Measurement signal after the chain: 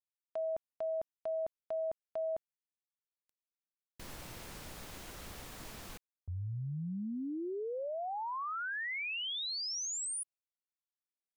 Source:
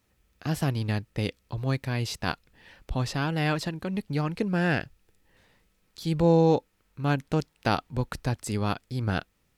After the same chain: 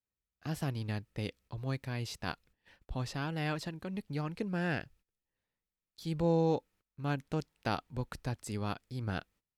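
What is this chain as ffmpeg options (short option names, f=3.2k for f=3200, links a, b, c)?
-af "agate=range=-19dB:threshold=-52dB:ratio=16:detection=peak,volume=-8.5dB"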